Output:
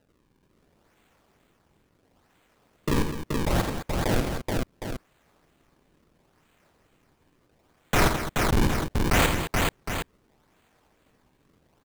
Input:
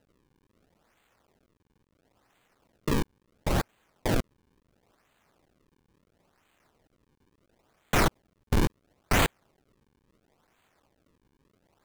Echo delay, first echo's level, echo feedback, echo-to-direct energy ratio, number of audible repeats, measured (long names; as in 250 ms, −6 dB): 49 ms, −9.0 dB, repeats not evenly spaced, 0.0 dB, 5